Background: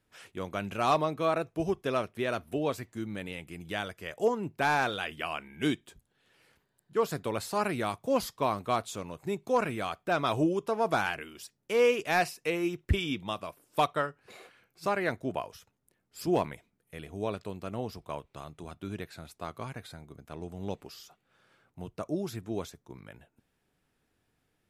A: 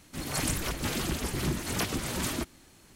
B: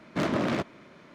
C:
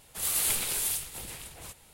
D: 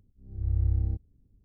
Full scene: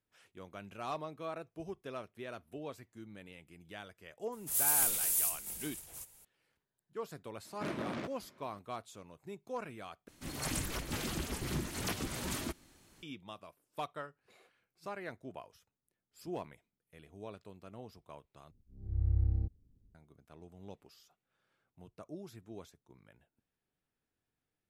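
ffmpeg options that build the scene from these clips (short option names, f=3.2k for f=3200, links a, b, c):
-filter_complex "[0:a]volume=-13.5dB[a];[3:a]aexciter=amount=3.8:drive=2.6:freq=5.4k[b];[a]asplit=3[c][d][e];[c]atrim=end=10.084[f];[1:a]atrim=end=2.95,asetpts=PTS-STARTPTS,volume=-6.5dB[g];[d]atrim=start=13.026:end=18.514[h];[4:a]atrim=end=1.44,asetpts=PTS-STARTPTS,volume=-4.5dB[i];[e]atrim=start=19.946[j];[b]atrim=end=1.93,asetpts=PTS-STARTPTS,volume=-11.5dB,afade=t=in:d=0.004:c=hsin,afade=t=out:st=1.926:d=0.004:c=hsin,adelay=4320[k];[2:a]atrim=end=1.14,asetpts=PTS-STARTPTS,volume=-12dB,afade=t=in:d=0.004:c=hsin,afade=t=out:st=1.136:d=0.004:c=hsin,adelay=7450[l];[f][g]acrossfade=d=0.004:c1=hsin:c2=hsin[m];[m][h]acrossfade=d=0.004:c1=hsin:c2=hsin[n];[n][i]acrossfade=d=0.004:c1=hsin:c2=hsin[o];[o][j]acrossfade=d=0.004:c1=hsin:c2=hsin[p];[p][k][l]amix=inputs=3:normalize=0"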